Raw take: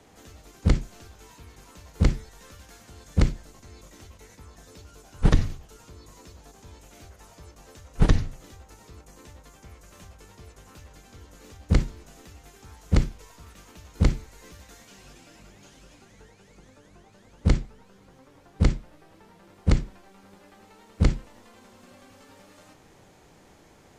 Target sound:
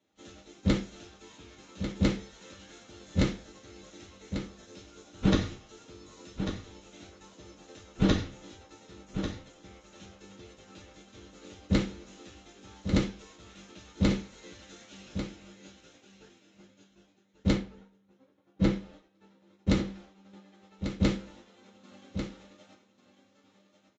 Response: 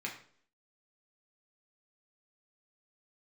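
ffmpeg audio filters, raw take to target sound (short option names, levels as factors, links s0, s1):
-filter_complex "[0:a]highpass=f=67:p=1,agate=range=0.1:threshold=0.00282:ratio=16:detection=peak,asettb=1/sr,asplit=3[s0][s1][s2];[s0]atrim=end=17.534[s3];[s1]atrim=start=17.53:end=18.73,asetpts=PTS-STARTPTS,afade=t=in:d=0.004:c=qsin,afade=t=out:st=1.196:d=0.004:c=qsin,highshelf=f=3200:g=-11[s4];[s2]atrim=start=18.726[s5];[s3][s4]acrossfade=d=0.004:c1=hsin:c2=qsin[s6];[s6][s5]acrossfade=d=0.004:c1=qsin:c2=hsin,aecho=1:1:1144:0.355[s7];[1:a]atrim=start_sample=2205,asetrate=70560,aresample=44100[s8];[s7][s8]afir=irnorm=-1:irlink=0,volume=1.41" -ar 16000 -c:a libvorbis -b:a 64k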